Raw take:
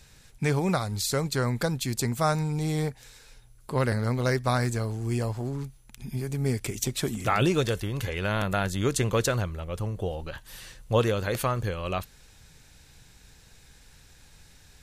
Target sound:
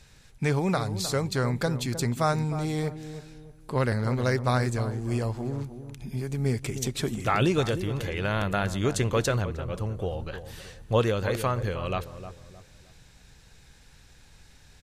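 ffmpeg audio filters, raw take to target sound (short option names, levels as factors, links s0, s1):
-filter_complex "[0:a]highshelf=f=9900:g=-9.5,asplit=2[s0][s1];[s1]adelay=309,lowpass=f=960:p=1,volume=0.316,asplit=2[s2][s3];[s3]adelay=309,lowpass=f=960:p=1,volume=0.38,asplit=2[s4][s5];[s5]adelay=309,lowpass=f=960:p=1,volume=0.38,asplit=2[s6][s7];[s7]adelay=309,lowpass=f=960:p=1,volume=0.38[s8];[s2][s4][s6][s8]amix=inputs=4:normalize=0[s9];[s0][s9]amix=inputs=2:normalize=0"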